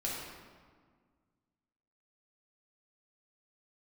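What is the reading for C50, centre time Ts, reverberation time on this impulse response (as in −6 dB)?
−0.5 dB, 92 ms, 1.7 s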